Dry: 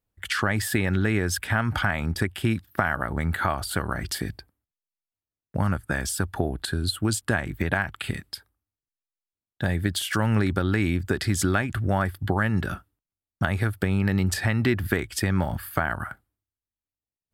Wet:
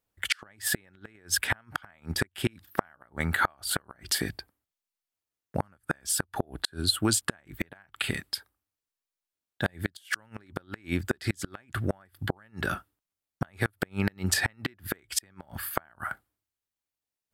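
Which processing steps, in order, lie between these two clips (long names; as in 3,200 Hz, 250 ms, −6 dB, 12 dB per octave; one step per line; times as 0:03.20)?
low-shelf EQ 220 Hz −10.5 dB
gate with flip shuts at −15 dBFS, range −33 dB
level +3.5 dB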